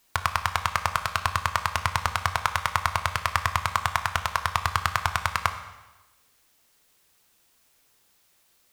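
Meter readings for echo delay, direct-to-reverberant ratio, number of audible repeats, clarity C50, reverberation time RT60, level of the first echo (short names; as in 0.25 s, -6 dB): none, 8.0 dB, none, 10.5 dB, 1.1 s, none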